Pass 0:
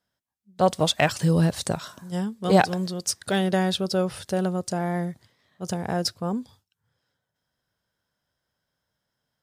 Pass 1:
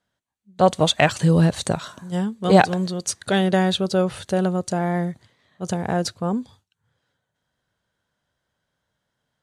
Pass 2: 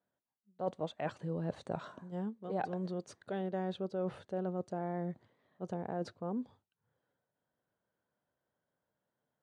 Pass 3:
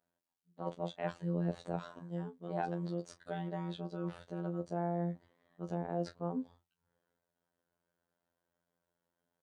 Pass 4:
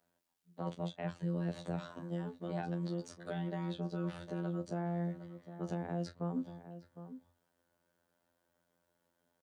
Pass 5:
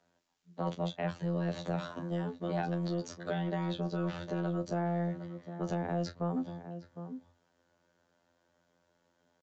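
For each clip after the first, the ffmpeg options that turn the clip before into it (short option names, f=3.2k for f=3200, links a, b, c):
-af "lowpass=8.7k,bandreject=f=5.2k:w=5.1,volume=4dB"
-af "areverse,acompressor=threshold=-27dB:ratio=6,areverse,bandpass=f=440:t=q:w=0.65:csg=0,volume=-5dB"
-filter_complex "[0:a]asplit=2[a][b];[b]adelay=30,volume=-12.5dB[c];[a][c]amix=inputs=2:normalize=0,afftfilt=real='hypot(re,im)*cos(PI*b)':imag='0':win_size=2048:overlap=0.75,volume=3dB"
-filter_complex "[0:a]acrossover=split=240|1600[a][b][c];[a]acompressor=threshold=-43dB:ratio=4[d];[b]acompressor=threshold=-49dB:ratio=4[e];[c]acompressor=threshold=-57dB:ratio=4[f];[d][e][f]amix=inputs=3:normalize=0,asplit=2[g][h];[h]adelay=758,volume=-12dB,highshelf=f=4k:g=-17.1[i];[g][i]amix=inputs=2:normalize=0,volume=6.5dB"
-filter_complex "[0:a]acrossover=split=410[a][b];[a]asoftclip=type=tanh:threshold=-37.5dB[c];[c][b]amix=inputs=2:normalize=0,aresample=16000,aresample=44100,volume=6.5dB"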